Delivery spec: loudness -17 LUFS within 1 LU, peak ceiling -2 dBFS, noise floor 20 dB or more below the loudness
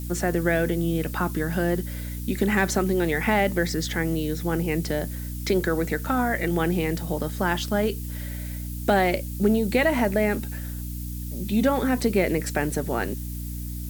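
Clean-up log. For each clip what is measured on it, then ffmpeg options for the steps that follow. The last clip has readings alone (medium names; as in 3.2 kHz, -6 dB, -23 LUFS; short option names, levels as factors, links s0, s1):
hum 60 Hz; highest harmonic 300 Hz; hum level -30 dBFS; noise floor -33 dBFS; noise floor target -45 dBFS; loudness -25.0 LUFS; peak level -8.0 dBFS; loudness target -17.0 LUFS
-> -af "bandreject=f=60:t=h:w=6,bandreject=f=120:t=h:w=6,bandreject=f=180:t=h:w=6,bandreject=f=240:t=h:w=6,bandreject=f=300:t=h:w=6"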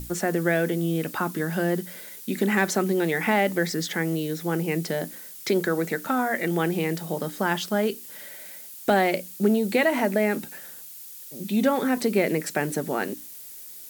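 hum not found; noise floor -42 dBFS; noise floor target -45 dBFS
-> -af "afftdn=nr=6:nf=-42"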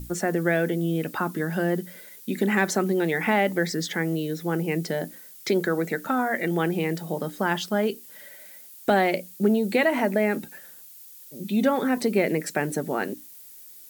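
noise floor -46 dBFS; loudness -25.0 LUFS; peak level -8.5 dBFS; loudness target -17.0 LUFS
-> -af "volume=2.51,alimiter=limit=0.794:level=0:latency=1"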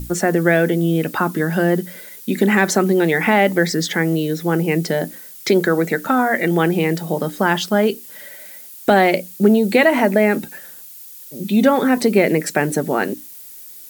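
loudness -17.5 LUFS; peak level -2.0 dBFS; noise floor -38 dBFS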